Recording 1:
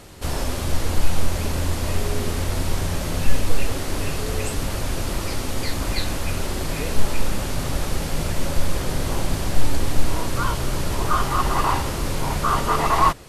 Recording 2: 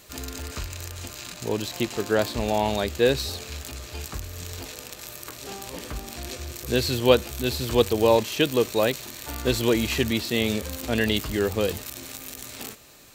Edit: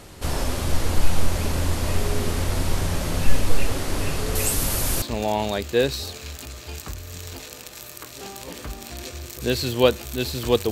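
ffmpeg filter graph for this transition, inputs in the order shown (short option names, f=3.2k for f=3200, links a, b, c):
-filter_complex "[0:a]asettb=1/sr,asplit=3[a][b][c];[a]atrim=end=4.354[d];[b]atrim=start=4.35:end=5.02,asetpts=PTS-STARTPTS,afade=t=in:d=0.004:c=qsin,afade=t=out:st=0.666:d=0.004:c=qsin,aemphasis=mode=production:type=50fm[e];[c]atrim=start=5.016[f];[d][e]acrossfade=d=0.004:c1=hsin:c2=qsin[g];[g][f]acrossfade=d=0.004:c1=qsin:c2=hsin,apad=whole_dur=10.71,atrim=end=10.71,atrim=end=5.022[h];[1:a]atrim=start=2.278:end=7.97[i];[h][i]acrossfade=d=0.004:c1=hsin:c2=hsin"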